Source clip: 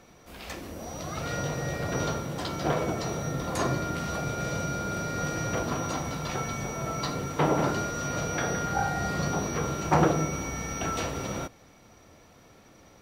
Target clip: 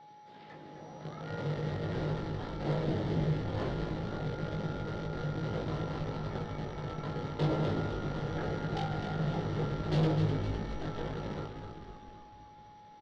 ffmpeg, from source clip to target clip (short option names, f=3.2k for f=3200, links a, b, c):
-filter_complex "[0:a]asettb=1/sr,asplit=3[a][b][c];[a]atrim=end=2.834[d];[b]atrim=start=2.83:end=3.34,asetpts=PTS-STARTPTS,afade=t=in:d=0.004:c=qsin,afade=t=out:st=0.506:d=0.004:c=qsin,tiltshelf=f=890:g=6.5[e];[c]atrim=start=3.336[f];[d][e]acrossfade=d=0.004:c1=hsin:c2=qsin[g];[g][f]acrossfade=d=0.004:c1=qsin:c2=hsin,acrossover=split=720|1800[h][i][j];[h]acrusher=bits=6:dc=4:mix=0:aa=0.000001[k];[i]aeval=exprs='(mod(15.8*val(0)+1,2)-1)/15.8':c=same[l];[j]acompressor=threshold=-56dB:ratio=6[m];[k][l][m]amix=inputs=3:normalize=0,highpass=f=130:w=0.5412,highpass=f=130:w=1.3066,equalizer=f=140:t=q:w=4:g=7,equalizer=f=260:t=q:w=4:g=-5,equalizer=f=700:t=q:w=4:g=-7,equalizer=f=1.1k:t=q:w=4:g=-10,equalizer=f=1.5k:t=q:w=4:g=-5,equalizer=f=2.5k:t=q:w=4:g=-10,lowpass=f=4.2k:w=0.5412,lowpass=f=4.2k:w=1.3066,asoftclip=type=tanh:threshold=-19.5dB,asplit=2[n][o];[o]adelay=19,volume=-4dB[p];[n][p]amix=inputs=2:normalize=0,asplit=9[q][r][s][t][u][v][w][x][y];[r]adelay=255,afreqshift=-52,volume=-7dB[z];[s]adelay=510,afreqshift=-104,volume=-11.2dB[aa];[t]adelay=765,afreqshift=-156,volume=-15.3dB[ab];[u]adelay=1020,afreqshift=-208,volume=-19.5dB[ac];[v]adelay=1275,afreqshift=-260,volume=-23.6dB[ad];[w]adelay=1530,afreqshift=-312,volume=-27.8dB[ae];[x]adelay=1785,afreqshift=-364,volume=-31.9dB[af];[y]adelay=2040,afreqshift=-416,volume=-36.1dB[ag];[q][z][aa][ab][ac][ad][ae][af][ag]amix=inputs=9:normalize=0,aeval=exprs='val(0)+0.00447*sin(2*PI*840*n/s)':c=same,volume=-5dB"